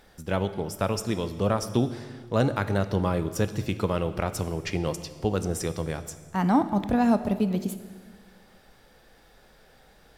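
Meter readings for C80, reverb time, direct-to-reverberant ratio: 14.0 dB, 1.6 s, 11.0 dB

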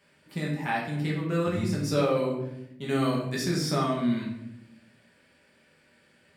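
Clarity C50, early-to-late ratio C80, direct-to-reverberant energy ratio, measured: 4.0 dB, 7.0 dB, -4.0 dB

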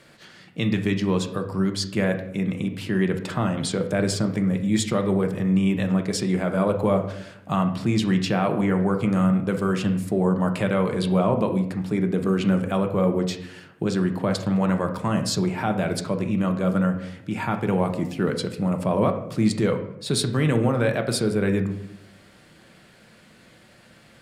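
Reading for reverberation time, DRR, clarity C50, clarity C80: 0.75 s, 5.0 dB, 9.5 dB, 12.5 dB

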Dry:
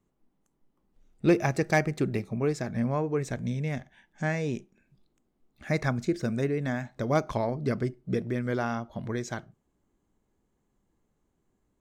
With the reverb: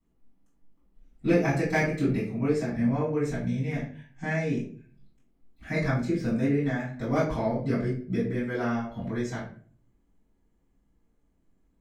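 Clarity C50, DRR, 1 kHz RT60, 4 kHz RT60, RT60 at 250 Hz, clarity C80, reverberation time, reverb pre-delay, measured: 5.5 dB, -11.5 dB, 0.35 s, 0.30 s, 0.55 s, 10.0 dB, 0.45 s, 3 ms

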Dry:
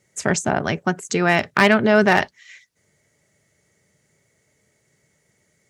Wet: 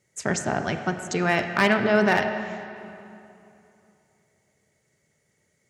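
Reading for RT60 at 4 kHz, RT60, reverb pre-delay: 2.1 s, 2.8 s, 30 ms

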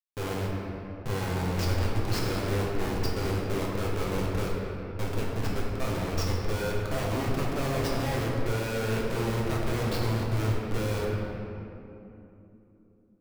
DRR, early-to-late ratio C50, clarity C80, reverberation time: -4.5 dB, -0.5 dB, 0.5 dB, 3.0 s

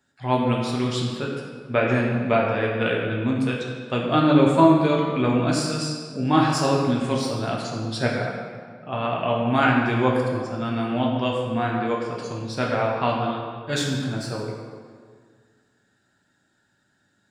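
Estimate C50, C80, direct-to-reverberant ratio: 2.0 dB, 3.0 dB, -2.5 dB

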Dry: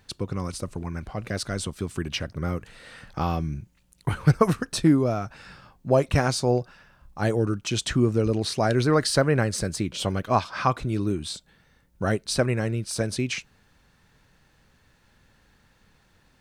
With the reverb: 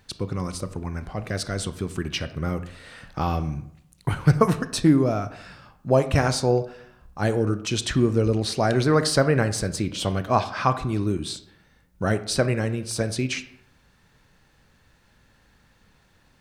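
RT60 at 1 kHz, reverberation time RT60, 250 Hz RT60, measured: 0.70 s, 0.70 s, 0.75 s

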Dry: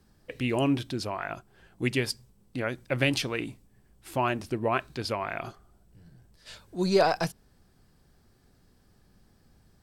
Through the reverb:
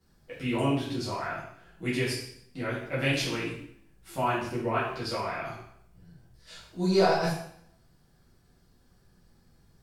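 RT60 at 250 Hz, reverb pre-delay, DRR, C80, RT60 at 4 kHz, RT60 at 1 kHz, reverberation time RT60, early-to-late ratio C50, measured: 0.65 s, 4 ms, -10.0 dB, 5.5 dB, 0.65 s, 0.65 s, 0.65 s, 2.5 dB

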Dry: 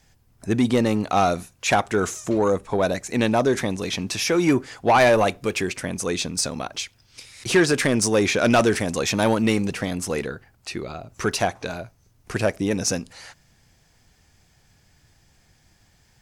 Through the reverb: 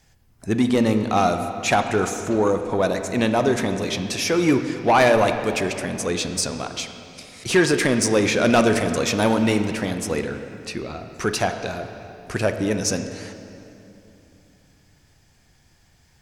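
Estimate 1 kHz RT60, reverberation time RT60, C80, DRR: 2.7 s, 2.9 s, 9.0 dB, 7.0 dB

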